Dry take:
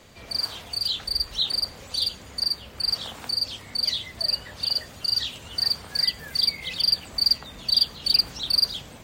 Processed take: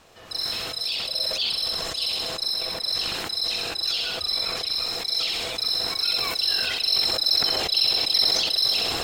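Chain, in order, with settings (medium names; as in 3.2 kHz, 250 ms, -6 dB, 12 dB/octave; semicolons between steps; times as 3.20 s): ring modulator 580 Hz; feedback echo behind a high-pass 65 ms, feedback 57%, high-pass 1.7 kHz, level -5.5 dB; decay stretcher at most 20 dB/s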